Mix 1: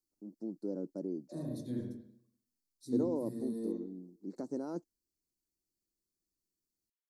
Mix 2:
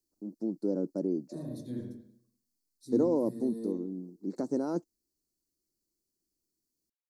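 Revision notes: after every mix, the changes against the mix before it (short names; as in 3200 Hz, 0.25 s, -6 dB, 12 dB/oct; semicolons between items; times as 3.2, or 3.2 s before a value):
first voice +7.5 dB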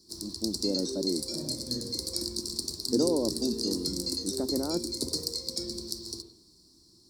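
background: unmuted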